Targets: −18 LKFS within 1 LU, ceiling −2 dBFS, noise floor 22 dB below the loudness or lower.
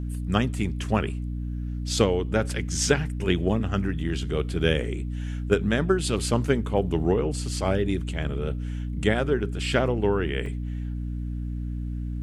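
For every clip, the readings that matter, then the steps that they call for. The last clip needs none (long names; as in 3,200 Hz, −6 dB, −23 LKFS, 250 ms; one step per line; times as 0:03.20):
number of dropouts 1; longest dropout 2.3 ms; mains hum 60 Hz; hum harmonics up to 300 Hz; level of the hum −28 dBFS; integrated loudness −26.5 LKFS; sample peak −5.0 dBFS; target loudness −18.0 LKFS
→ repair the gap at 0:10.46, 2.3 ms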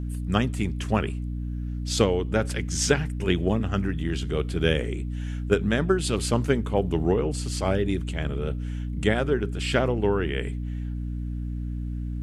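number of dropouts 0; mains hum 60 Hz; hum harmonics up to 300 Hz; level of the hum −28 dBFS
→ mains-hum notches 60/120/180/240/300 Hz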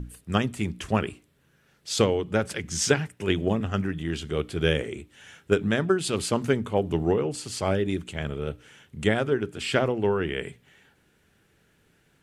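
mains hum none found; integrated loudness −26.5 LKFS; sample peak −6.5 dBFS; target loudness −18.0 LKFS
→ level +8.5 dB
brickwall limiter −2 dBFS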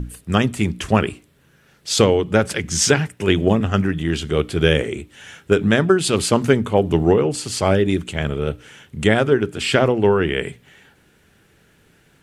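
integrated loudness −18.5 LKFS; sample peak −2.0 dBFS; background noise floor −56 dBFS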